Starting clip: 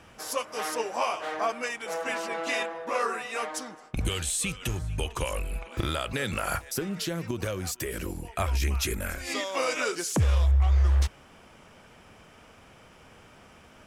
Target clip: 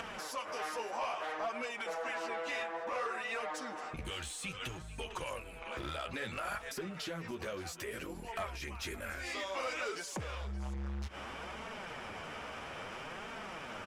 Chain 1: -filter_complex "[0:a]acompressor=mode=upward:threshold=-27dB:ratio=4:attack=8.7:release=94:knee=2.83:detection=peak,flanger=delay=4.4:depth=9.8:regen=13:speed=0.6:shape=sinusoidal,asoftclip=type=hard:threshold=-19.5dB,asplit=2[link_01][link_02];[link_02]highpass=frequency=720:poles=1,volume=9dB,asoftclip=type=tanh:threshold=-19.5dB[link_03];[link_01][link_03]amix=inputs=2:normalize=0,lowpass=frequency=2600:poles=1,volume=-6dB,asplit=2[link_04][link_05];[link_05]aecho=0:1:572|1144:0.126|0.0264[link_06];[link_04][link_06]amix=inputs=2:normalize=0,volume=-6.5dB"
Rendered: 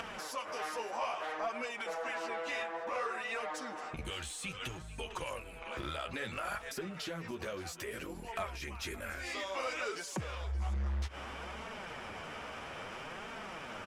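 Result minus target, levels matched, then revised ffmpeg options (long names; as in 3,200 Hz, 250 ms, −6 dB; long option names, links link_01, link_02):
hard clipping: distortion −12 dB
-filter_complex "[0:a]acompressor=mode=upward:threshold=-27dB:ratio=4:attack=8.7:release=94:knee=2.83:detection=peak,flanger=delay=4.4:depth=9.8:regen=13:speed=0.6:shape=sinusoidal,asoftclip=type=hard:threshold=-26dB,asplit=2[link_01][link_02];[link_02]highpass=frequency=720:poles=1,volume=9dB,asoftclip=type=tanh:threshold=-19.5dB[link_03];[link_01][link_03]amix=inputs=2:normalize=0,lowpass=frequency=2600:poles=1,volume=-6dB,asplit=2[link_04][link_05];[link_05]aecho=0:1:572|1144:0.126|0.0264[link_06];[link_04][link_06]amix=inputs=2:normalize=0,volume=-6.5dB"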